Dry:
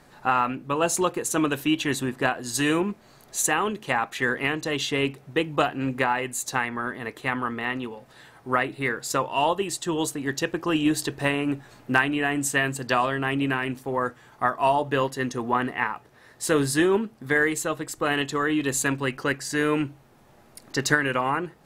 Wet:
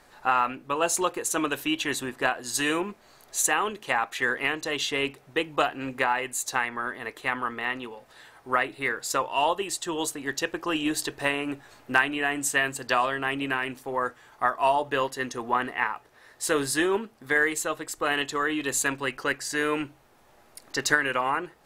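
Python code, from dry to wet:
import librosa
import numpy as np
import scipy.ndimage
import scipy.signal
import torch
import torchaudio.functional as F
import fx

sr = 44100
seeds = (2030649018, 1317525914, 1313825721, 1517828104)

y = fx.peak_eq(x, sr, hz=150.0, db=-11.0, octaves=2.1)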